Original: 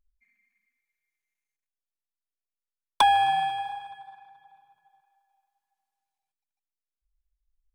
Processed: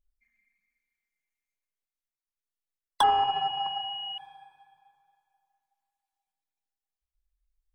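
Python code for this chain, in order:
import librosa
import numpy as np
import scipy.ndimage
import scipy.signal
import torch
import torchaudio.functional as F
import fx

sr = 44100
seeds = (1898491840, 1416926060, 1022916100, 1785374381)

y = fx.spec_dropout(x, sr, seeds[0], share_pct=21)
y = y + 10.0 ** (-19.5 / 20.0) * np.pad(y, (int(656 * sr / 1000.0), 0))[:len(y)]
y = fx.rev_plate(y, sr, seeds[1], rt60_s=1.9, hf_ratio=0.9, predelay_ms=0, drr_db=3.5)
y = fx.pwm(y, sr, carrier_hz=2900.0, at=(3.03, 4.18))
y = F.gain(torch.from_numpy(y), -3.5).numpy()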